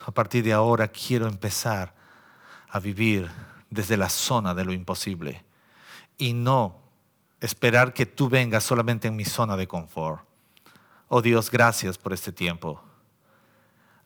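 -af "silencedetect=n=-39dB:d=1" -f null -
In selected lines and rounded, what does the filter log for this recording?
silence_start: 12.79
silence_end: 14.06 | silence_duration: 1.27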